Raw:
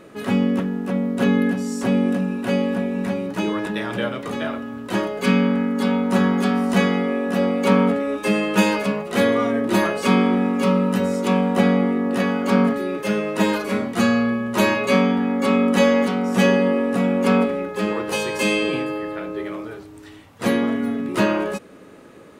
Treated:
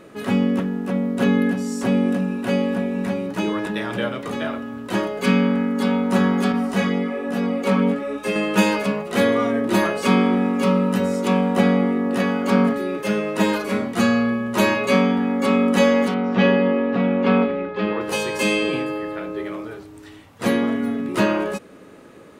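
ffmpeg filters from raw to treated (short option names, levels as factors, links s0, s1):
-filter_complex "[0:a]asettb=1/sr,asplit=3[s0][s1][s2];[s0]atrim=end=6.524[s3];[s1]atrim=start=6.52:end=8.36,asetpts=PTS-STARTPTS,afade=t=in:d=0.004:c=qsin,afade=t=out:st=1.836:d=0.004:c=qsin,flanger=delay=17:depth=4.1:speed=1.1[s4];[s2]atrim=start=8.356[s5];[s3][s4]acrossfade=d=0.004:c1=hsin:c2=qsin[s6];[s6][s5]acrossfade=d=0.004:c1=qsin:c2=hsin,asettb=1/sr,asplit=3[s7][s8][s9];[s7]atrim=end=16.144[s10];[s8]atrim=start=16.14:end=18.01,asetpts=PTS-STARTPTS,afade=t=in:d=0.004:c=qsin,afade=t=out:st=1.866:d=0.004:c=qsin,lowpass=f=3900:w=0.5412,lowpass=f=3900:w=1.3066[s11];[s9]atrim=start=18.006[s12];[s10][s11]acrossfade=d=0.004:c1=hsin:c2=qsin[s13];[s13][s12]acrossfade=d=0.004:c1=qsin:c2=hsin"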